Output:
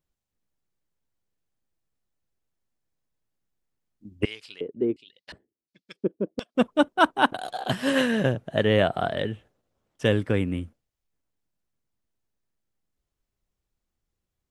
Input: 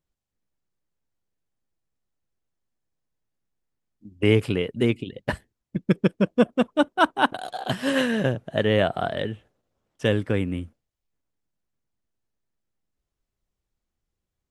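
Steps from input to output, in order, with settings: 4.25–6.55 LFO band-pass square 1.4 Hz 360–4600 Hz

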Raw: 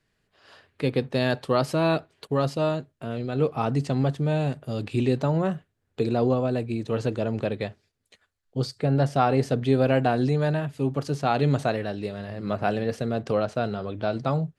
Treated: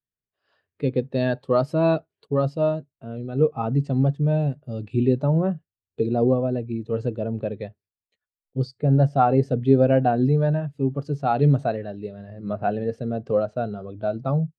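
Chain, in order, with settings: spectral expander 1.5:1; gain +2 dB

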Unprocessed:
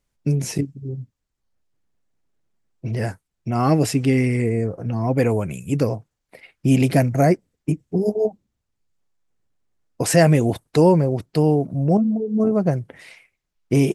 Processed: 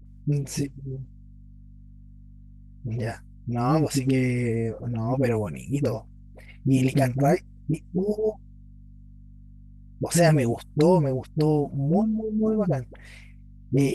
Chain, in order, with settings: hum 50 Hz, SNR 21 dB; dispersion highs, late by 57 ms, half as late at 470 Hz; gain -4.5 dB

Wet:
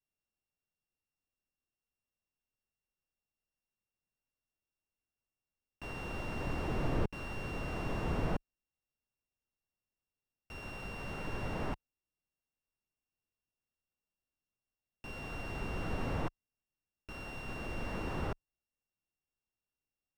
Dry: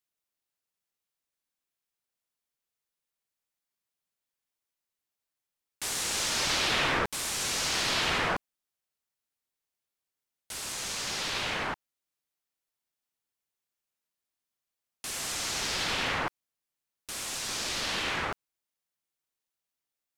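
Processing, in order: sample sorter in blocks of 16 samples; tilt -3 dB/oct; slew limiter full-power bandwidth 24 Hz; gain -5 dB

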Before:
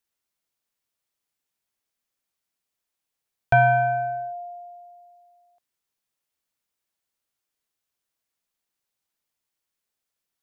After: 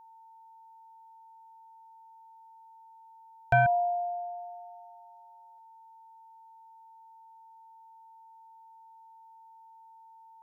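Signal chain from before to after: whine 900 Hz -46 dBFS; 3.66–4.38 brick-wall FIR band-pass 330–1400 Hz; gain -5.5 dB

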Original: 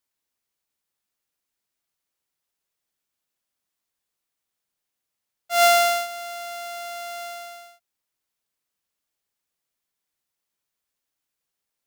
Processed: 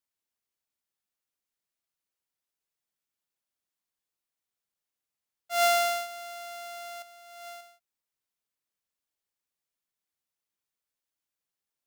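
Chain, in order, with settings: 7.02–7.61 negative-ratio compressor -39 dBFS, ratio -0.5; gain -7 dB

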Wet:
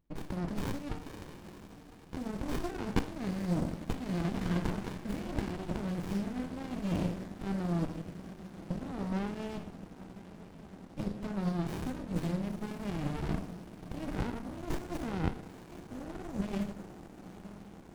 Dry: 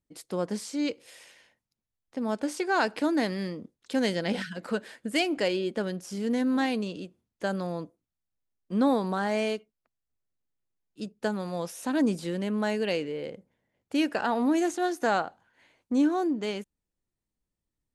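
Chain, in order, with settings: in parallel at -1.5 dB: level quantiser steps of 14 dB; on the sum: limiter -19 dBFS, peak gain reduction 9 dB; negative-ratio compressor -36 dBFS, ratio -1; on a send: diffused feedback echo 0.944 s, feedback 73%, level -13.5 dB; on the sum: shoebox room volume 150 m³, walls mixed, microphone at 0.6 m; running maximum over 65 samples

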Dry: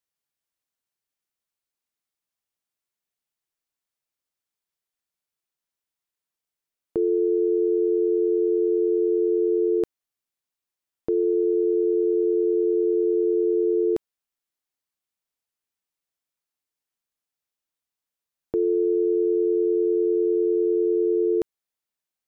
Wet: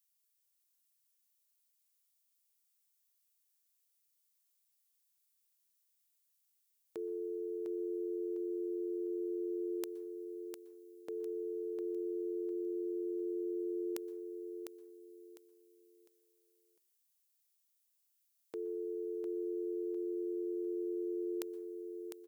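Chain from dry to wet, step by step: differentiator; feedback echo 0.703 s, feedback 30%, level -6 dB; on a send at -21 dB: reverb RT60 0.50 s, pre-delay 0.113 s; on the sum: gain +6.5 dB

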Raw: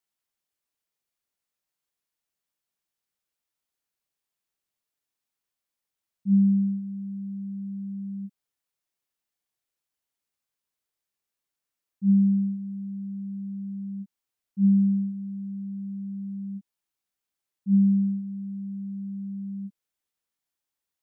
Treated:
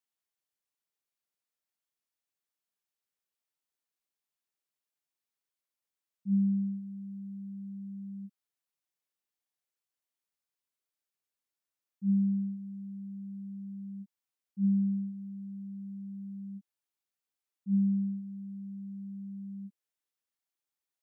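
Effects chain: low shelf 100 Hz -9.5 dB; gain -5.5 dB

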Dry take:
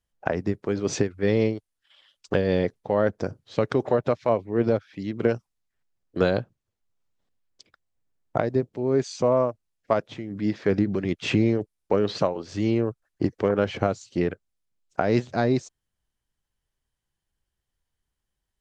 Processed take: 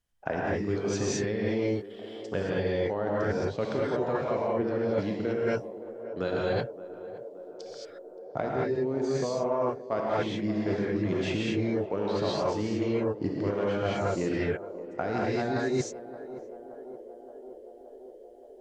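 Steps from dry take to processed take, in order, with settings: non-linear reverb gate 0.25 s rising, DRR -6.5 dB; reverse; compressor 12:1, threshold -25 dBFS, peak gain reduction 14.5 dB; reverse; narrowing echo 0.573 s, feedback 82%, band-pass 500 Hz, level -13.5 dB

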